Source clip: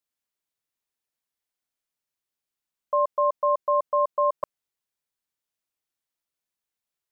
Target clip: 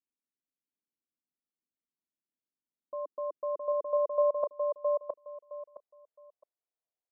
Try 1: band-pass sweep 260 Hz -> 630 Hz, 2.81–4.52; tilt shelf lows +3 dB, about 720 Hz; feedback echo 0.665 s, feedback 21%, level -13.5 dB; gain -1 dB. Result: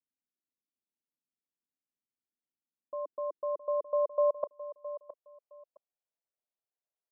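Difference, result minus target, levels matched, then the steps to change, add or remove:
echo-to-direct -11 dB
change: feedback echo 0.665 s, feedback 21%, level -2.5 dB

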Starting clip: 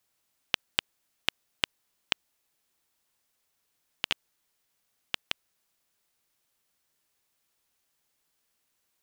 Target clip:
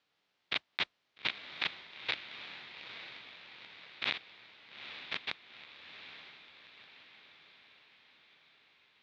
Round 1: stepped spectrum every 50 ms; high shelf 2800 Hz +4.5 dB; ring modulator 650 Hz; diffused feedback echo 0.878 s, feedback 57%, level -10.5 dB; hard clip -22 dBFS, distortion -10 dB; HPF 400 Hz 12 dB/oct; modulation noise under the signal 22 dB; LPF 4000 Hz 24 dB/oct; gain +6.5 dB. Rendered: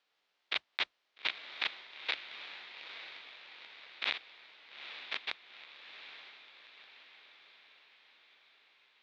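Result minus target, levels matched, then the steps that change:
125 Hz band -14.0 dB
change: HPF 110 Hz 12 dB/oct

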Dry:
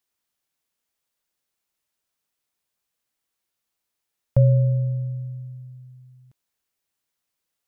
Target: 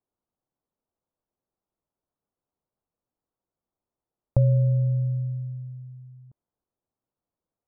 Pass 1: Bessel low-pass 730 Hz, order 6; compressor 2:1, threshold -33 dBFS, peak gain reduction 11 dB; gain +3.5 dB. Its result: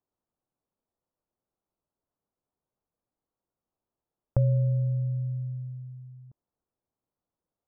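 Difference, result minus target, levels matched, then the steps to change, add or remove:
compressor: peak gain reduction +4 dB
change: compressor 2:1, threshold -25.5 dBFS, peak gain reduction 7.5 dB

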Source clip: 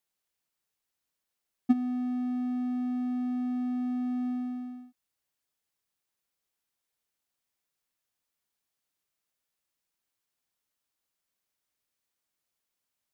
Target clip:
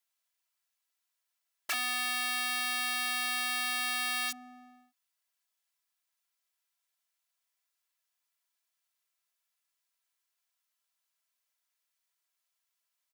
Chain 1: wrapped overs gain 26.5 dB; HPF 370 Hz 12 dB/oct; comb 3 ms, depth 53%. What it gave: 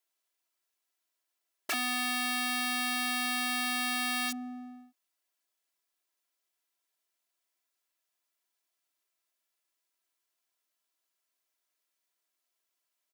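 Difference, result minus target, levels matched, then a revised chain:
500 Hz band +4.5 dB
wrapped overs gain 26.5 dB; HPF 840 Hz 12 dB/oct; comb 3 ms, depth 53%

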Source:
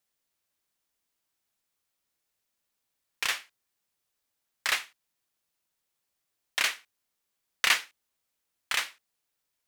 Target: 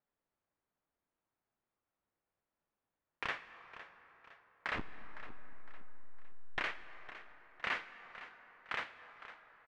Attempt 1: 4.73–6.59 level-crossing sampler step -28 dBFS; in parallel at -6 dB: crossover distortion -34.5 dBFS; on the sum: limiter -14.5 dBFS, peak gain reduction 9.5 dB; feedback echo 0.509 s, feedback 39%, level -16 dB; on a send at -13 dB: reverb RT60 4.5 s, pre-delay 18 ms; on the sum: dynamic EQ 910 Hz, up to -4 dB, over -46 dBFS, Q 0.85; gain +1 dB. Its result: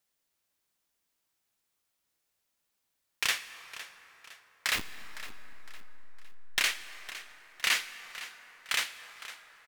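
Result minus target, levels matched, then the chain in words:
1000 Hz band -9.5 dB
4.73–6.59 level-crossing sampler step -28 dBFS; in parallel at -6 dB: crossover distortion -34.5 dBFS; on the sum: limiter -14.5 dBFS, peak gain reduction 9.5 dB; feedback echo 0.509 s, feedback 39%, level -16 dB; on a send at -13 dB: reverb RT60 4.5 s, pre-delay 18 ms; on the sum: dynamic EQ 910 Hz, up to -4 dB, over -46 dBFS, Q 0.85; LPF 1300 Hz 12 dB/oct; gain +1 dB

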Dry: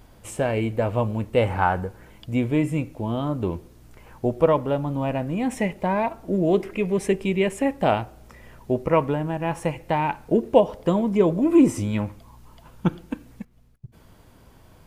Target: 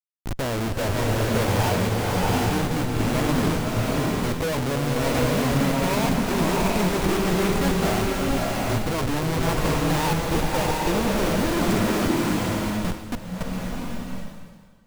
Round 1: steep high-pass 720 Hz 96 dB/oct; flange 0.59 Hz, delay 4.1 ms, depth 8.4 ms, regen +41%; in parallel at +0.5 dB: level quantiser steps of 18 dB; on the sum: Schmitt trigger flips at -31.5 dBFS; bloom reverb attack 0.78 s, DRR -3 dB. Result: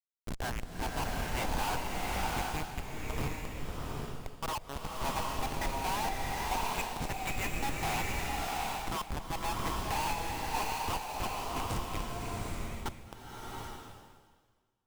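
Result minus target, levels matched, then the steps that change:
1000 Hz band +5.0 dB
remove: steep high-pass 720 Hz 96 dB/oct

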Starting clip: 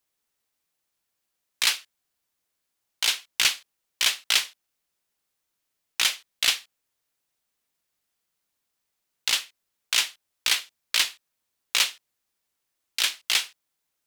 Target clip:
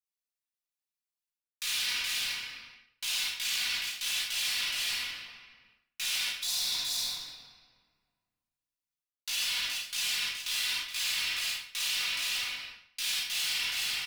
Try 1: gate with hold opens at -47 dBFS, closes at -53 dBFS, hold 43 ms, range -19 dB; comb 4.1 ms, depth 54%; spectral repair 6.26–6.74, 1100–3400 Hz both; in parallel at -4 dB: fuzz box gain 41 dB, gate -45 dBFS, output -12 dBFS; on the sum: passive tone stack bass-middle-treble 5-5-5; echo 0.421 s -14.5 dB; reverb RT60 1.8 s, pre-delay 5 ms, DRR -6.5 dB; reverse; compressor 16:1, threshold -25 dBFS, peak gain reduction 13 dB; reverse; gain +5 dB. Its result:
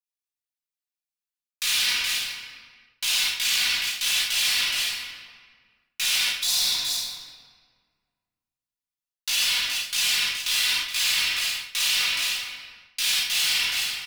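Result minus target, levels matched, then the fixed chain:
compressor: peak gain reduction -8.5 dB
gate with hold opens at -47 dBFS, closes at -53 dBFS, hold 43 ms, range -19 dB; comb 4.1 ms, depth 54%; spectral repair 6.26–6.74, 1100–3400 Hz both; in parallel at -4 dB: fuzz box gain 41 dB, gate -45 dBFS, output -12 dBFS; on the sum: passive tone stack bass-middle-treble 5-5-5; echo 0.421 s -14.5 dB; reverb RT60 1.8 s, pre-delay 5 ms, DRR -6.5 dB; reverse; compressor 16:1, threshold -34 dBFS, peak gain reduction 21.5 dB; reverse; gain +5 dB

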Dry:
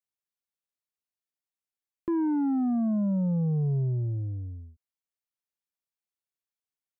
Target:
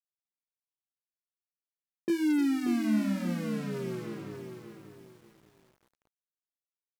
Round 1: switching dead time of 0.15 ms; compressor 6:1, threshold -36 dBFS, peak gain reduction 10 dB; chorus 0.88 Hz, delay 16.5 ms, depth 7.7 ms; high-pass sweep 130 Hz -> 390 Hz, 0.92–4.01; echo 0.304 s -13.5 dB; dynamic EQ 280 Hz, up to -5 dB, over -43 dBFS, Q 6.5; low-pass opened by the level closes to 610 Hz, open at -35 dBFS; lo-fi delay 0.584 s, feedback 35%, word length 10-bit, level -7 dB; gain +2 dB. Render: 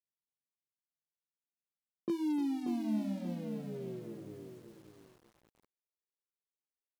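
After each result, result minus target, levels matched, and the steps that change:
compressor: peak gain reduction +7 dB; switching dead time: distortion -9 dB
change: compressor 6:1, threshold -27.5 dBFS, peak gain reduction 3 dB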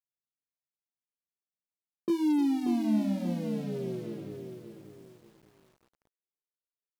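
switching dead time: distortion -9 dB
change: switching dead time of 0.34 ms

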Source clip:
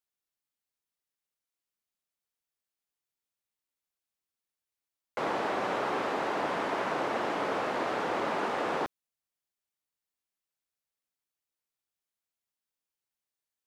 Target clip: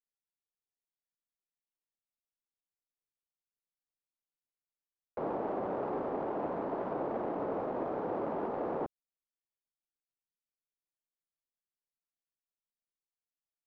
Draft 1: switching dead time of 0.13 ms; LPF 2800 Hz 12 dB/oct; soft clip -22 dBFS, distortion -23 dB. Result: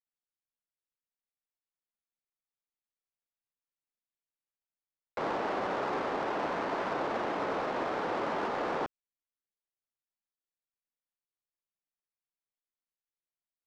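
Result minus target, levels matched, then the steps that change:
2000 Hz band +10.5 dB
change: LPF 710 Hz 12 dB/oct

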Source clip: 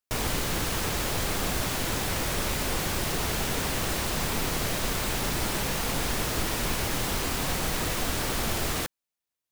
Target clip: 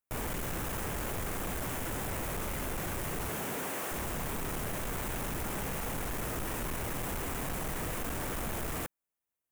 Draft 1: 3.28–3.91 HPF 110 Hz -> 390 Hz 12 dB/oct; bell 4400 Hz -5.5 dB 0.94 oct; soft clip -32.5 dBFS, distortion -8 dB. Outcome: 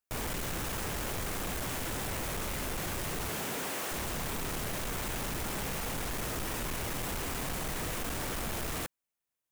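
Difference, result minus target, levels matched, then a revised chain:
4000 Hz band +4.5 dB
3.28–3.91 HPF 110 Hz -> 390 Hz 12 dB/oct; bell 4400 Hz -16 dB 0.94 oct; soft clip -32.5 dBFS, distortion -9 dB

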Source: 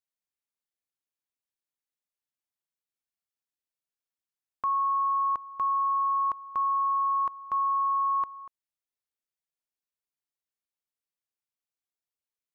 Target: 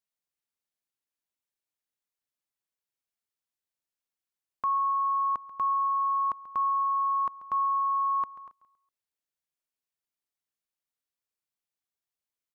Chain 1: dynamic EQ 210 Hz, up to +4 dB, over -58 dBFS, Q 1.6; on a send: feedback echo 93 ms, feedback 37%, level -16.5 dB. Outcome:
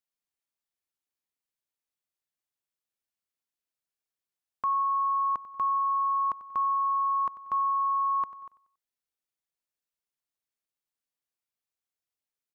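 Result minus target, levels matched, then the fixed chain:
echo 44 ms early
dynamic EQ 210 Hz, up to +4 dB, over -58 dBFS, Q 1.6; on a send: feedback echo 0.137 s, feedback 37%, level -16.5 dB

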